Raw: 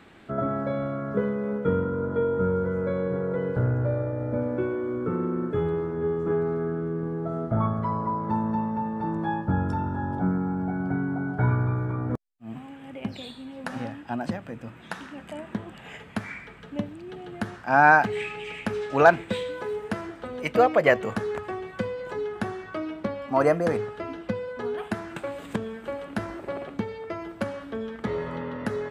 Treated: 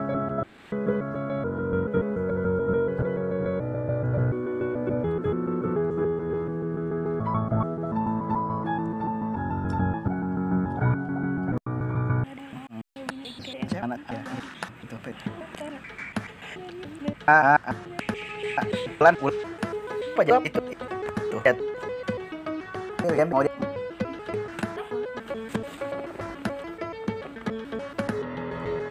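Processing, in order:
slices reordered back to front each 144 ms, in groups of 5
one half of a high-frequency compander encoder only

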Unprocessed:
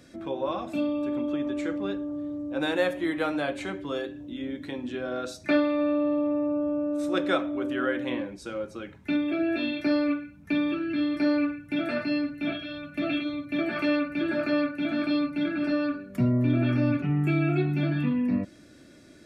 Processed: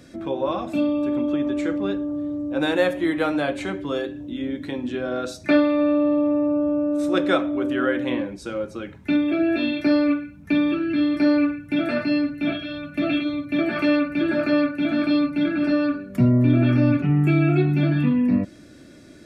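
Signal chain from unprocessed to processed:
low-shelf EQ 450 Hz +3 dB
level +4 dB

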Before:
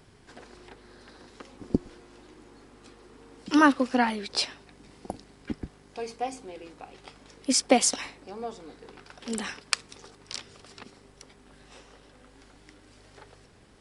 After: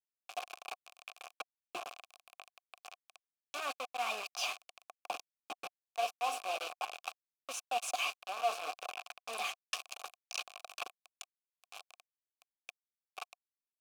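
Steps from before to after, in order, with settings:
formants moved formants +3 semitones
reversed playback
downward compressor 16 to 1, threshold −39 dBFS, peak gain reduction 26.5 dB
reversed playback
bit reduction 7 bits
formant filter a
spectral tilt +4.5 dB per octave
level +16 dB

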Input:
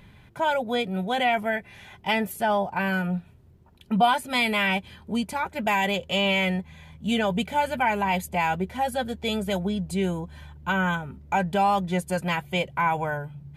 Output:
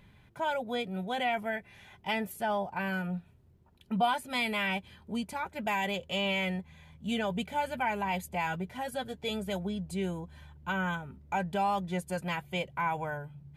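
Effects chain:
0:08.46–0:09.31: comb filter 6.8 ms, depth 46%
level −7.5 dB

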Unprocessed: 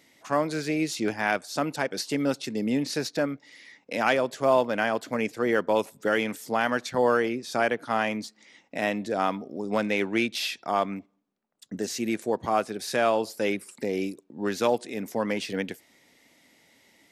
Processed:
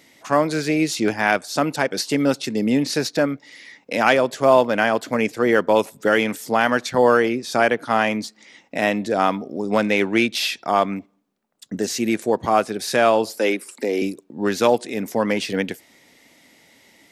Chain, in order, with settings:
0:13.38–0:14.02: high-pass filter 240 Hz 24 dB per octave
level +7 dB

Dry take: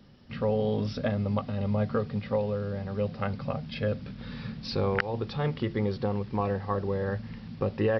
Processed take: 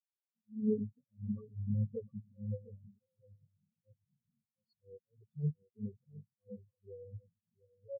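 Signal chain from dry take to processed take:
volume swells 219 ms
spectral peaks only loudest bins 8
low-pass filter sweep 250 Hz → 4,200 Hz, 0:00.58–0:01.81
on a send: single-tap delay 708 ms −5 dB
on the sum: every bin expanded away from the loudest bin 4 to 1
level −5 dB

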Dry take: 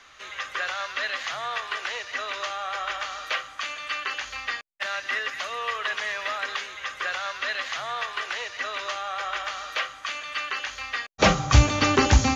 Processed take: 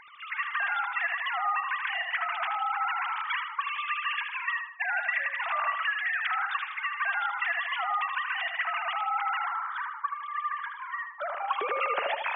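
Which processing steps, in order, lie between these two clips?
three sine waves on the formant tracks
0:05.72–0:06.31: flat-topped bell 780 Hz −12.5 dB 1.1 octaves
downward compressor 6 to 1, threshold −27 dBFS, peak gain reduction 13 dB
0:09.46–0:11.33: phaser with its sweep stopped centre 1,100 Hz, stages 4
feedback echo with a low-pass in the loop 78 ms, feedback 46%, low-pass 2,500 Hz, level −4.5 dB

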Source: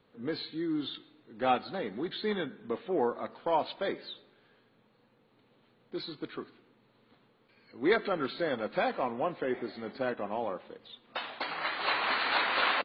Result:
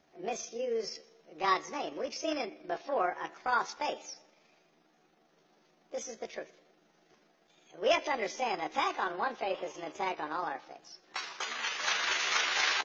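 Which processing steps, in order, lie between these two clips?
pitch shift by two crossfaded delay taps +7 semitones

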